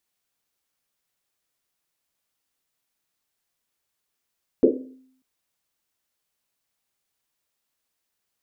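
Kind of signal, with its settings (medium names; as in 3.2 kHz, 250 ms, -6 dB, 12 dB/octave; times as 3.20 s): Risset drum length 0.59 s, pitch 260 Hz, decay 0.74 s, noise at 390 Hz, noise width 240 Hz, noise 65%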